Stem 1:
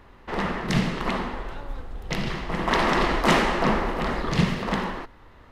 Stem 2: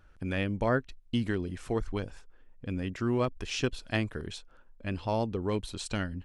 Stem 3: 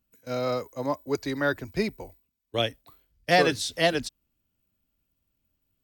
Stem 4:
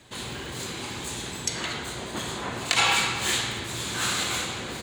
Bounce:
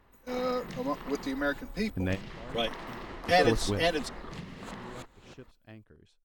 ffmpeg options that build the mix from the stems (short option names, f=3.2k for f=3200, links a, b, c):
-filter_complex "[0:a]volume=-12dB[a];[1:a]tiltshelf=f=1.3k:g=3.5,adelay=1750,volume=-0.5dB[b];[2:a]aecho=1:1:4:0.94,volume=-7dB,asplit=2[c][d];[3:a]tiltshelf=f=970:g=5,aeval=exprs='val(0)*pow(10,-32*if(lt(mod(-3.2*n/s,1),2*abs(-3.2)/1000),1-mod(-3.2*n/s,1)/(2*abs(-3.2)/1000),(mod(-3.2*n/s,1)-2*abs(-3.2)/1000)/(1-2*abs(-3.2)/1000))/20)':c=same,adelay=650,volume=-13.5dB[e];[d]apad=whole_len=352536[f];[b][f]sidechaingate=range=-22dB:threshold=-51dB:ratio=16:detection=peak[g];[a][e]amix=inputs=2:normalize=0,acompressor=threshold=-38dB:ratio=10,volume=0dB[h];[g][c][h]amix=inputs=3:normalize=0"